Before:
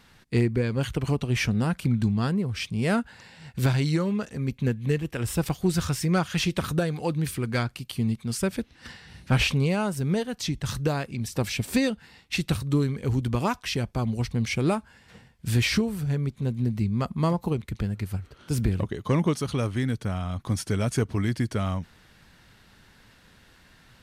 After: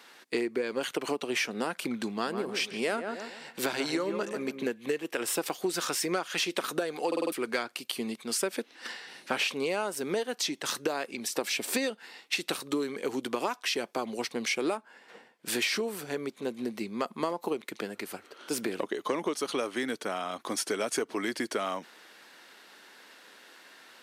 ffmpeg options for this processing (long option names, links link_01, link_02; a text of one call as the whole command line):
ffmpeg -i in.wav -filter_complex "[0:a]asettb=1/sr,asplit=3[link_01][link_02][link_03];[link_01]atrim=end=2.124[link_04];[link_02]atrim=start=2.12:end=4.67,asetpts=PTS-STARTPTS,afade=type=in:duration=0.004:curve=qsin,afade=type=out:start_time=2.546:duration=0.004:curve=qsin,asplit=2[link_05][link_06];[link_06]adelay=141,lowpass=frequency=1400:poles=1,volume=-7.5dB,asplit=2[link_07][link_08];[link_08]adelay=141,lowpass=frequency=1400:poles=1,volume=0.35,asplit=2[link_09][link_10];[link_10]adelay=141,lowpass=frequency=1400:poles=1,volume=0.35,asplit=2[link_11][link_12];[link_12]adelay=141,lowpass=frequency=1400:poles=1,volume=0.35[link_13];[link_05][link_07][link_09][link_11][link_13]amix=inputs=5:normalize=0,atrim=end_sample=112455[link_14];[link_03]atrim=start=4.666[link_15];[link_04][link_14]acrossfade=duration=0.004:curve1=hsin:curve2=qsin[link_16];[link_16][link_15]acrossfade=duration=0.004:curve1=qsin:curve2=hsin,asettb=1/sr,asplit=3[link_17][link_18][link_19];[link_17]atrim=end=14.774[link_20];[link_18]atrim=start=14.77:end=15.48,asetpts=PTS-STARTPTS,afade=type=in:duration=0.004:curve=qsin,afade=type=out:start_time=0.706:duration=0.004:curve=qsin,highshelf=frequency=2600:gain=-9.5[link_21];[link_19]atrim=start=15.476[link_22];[link_20][link_21]acrossfade=duration=0.004:curve1=hsin:curve2=qsin[link_23];[link_23][link_22]acrossfade=duration=0.004:curve1=qsin:curve2=hsin,asplit=6[link_24][link_25][link_26][link_27][link_28][link_29];[link_24]atrim=end=7.122[link_30];[link_25]atrim=start=7.068:end=7.122[link_31];[link_26]atrim=start=7.068:end=7.122[link_32];[link_27]atrim=start=7.068:end=7.122[link_33];[link_28]atrim=start=7.068:end=7.122[link_34];[link_29]atrim=start=7.318[link_35];[link_30][link_31]acrossfade=duration=0.004:curve1=hsin:curve2=hsin[link_36];[link_36][link_32]acrossfade=duration=0.004:curve1=hsin:curve2=hsin[link_37];[link_37][link_33]acrossfade=duration=0.004:curve1=hsin:curve2=hsin[link_38];[link_38][link_34]acrossfade=duration=0.004:curve1=hsin:curve2=hsin[link_39];[link_39][link_35]acrossfade=duration=0.004:curve1=hsin:curve2=hsin,highpass=frequency=320:width=0.5412,highpass=frequency=320:width=1.3066,acompressor=threshold=-31dB:ratio=6,volume=4.5dB" out.wav